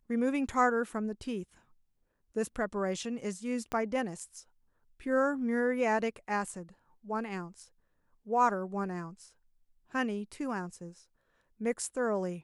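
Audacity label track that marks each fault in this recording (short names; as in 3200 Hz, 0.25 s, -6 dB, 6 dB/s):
3.720000	3.720000	pop -21 dBFS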